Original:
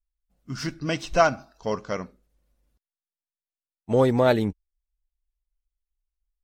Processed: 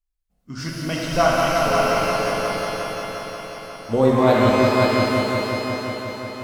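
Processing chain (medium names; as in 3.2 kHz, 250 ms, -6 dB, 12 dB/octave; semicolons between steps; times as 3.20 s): multi-head delay 178 ms, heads all three, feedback 65%, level -7 dB; pitch-shifted reverb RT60 2.2 s, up +12 st, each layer -8 dB, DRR -2.5 dB; trim -1.5 dB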